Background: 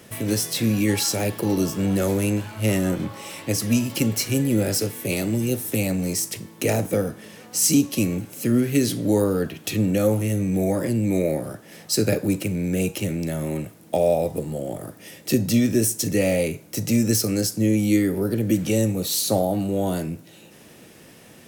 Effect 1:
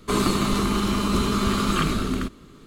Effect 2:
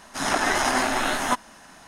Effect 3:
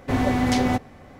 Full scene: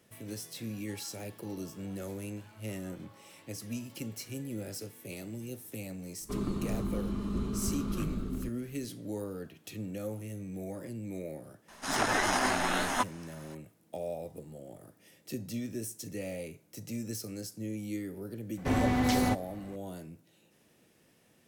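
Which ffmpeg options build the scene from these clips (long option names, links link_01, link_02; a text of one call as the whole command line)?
ffmpeg -i bed.wav -i cue0.wav -i cue1.wav -i cue2.wav -filter_complex "[0:a]volume=-18dB[link_01];[1:a]tiltshelf=frequency=670:gain=8.5[link_02];[3:a]acontrast=81[link_03];[link_02]atrim=end=2.66,asetpts=PTS-STARTPTS,volume=-17dB,afade=type=in:duration=0.004:curve=hsin,afade=type=out:start_time=2.656:duration=0.004:curve=hsin,adelay=6210[link_04];[2:a]atrim=end=1.87,asetpts=PTS-STARTPTS,volume=-6dB,afade=type=in:duration=0.004:curve=hsin,afade=type=out:start_time=1.866:duration=0.004:curve=hsin,adelay=11680[link_05];[link_03]atrim=end=1.19,asetpts=PTS-STARTPTS,volume=-12.5dB,afade=type=in:duration=0.004:curve=hsin,afade=type=out:start_time=1.186:duration=0.004:curve=hsin,adelay=18570[link_06];[link_01][link_04][link_05][link_06]amix=inputs=4:normalize=0" out.wav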